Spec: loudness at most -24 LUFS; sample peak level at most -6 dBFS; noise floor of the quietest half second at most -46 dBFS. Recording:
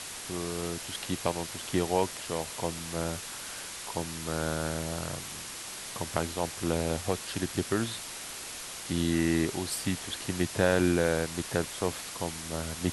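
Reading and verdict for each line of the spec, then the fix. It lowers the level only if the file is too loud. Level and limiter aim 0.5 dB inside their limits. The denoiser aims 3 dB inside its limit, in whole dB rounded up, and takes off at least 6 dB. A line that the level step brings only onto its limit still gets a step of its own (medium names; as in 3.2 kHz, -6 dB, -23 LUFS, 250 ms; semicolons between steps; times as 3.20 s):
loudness -31.5 LUFS: pass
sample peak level -9.5 dBFS: pass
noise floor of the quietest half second -41 dBFS: fail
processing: noise reduction 8 dB, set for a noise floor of -41 dBFS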